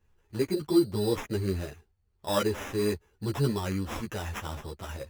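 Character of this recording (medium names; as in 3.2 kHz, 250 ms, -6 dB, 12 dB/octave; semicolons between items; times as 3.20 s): aliases and images of a low sample rate 4.4 kHz, jitter 0%; a shimmering, thickened sound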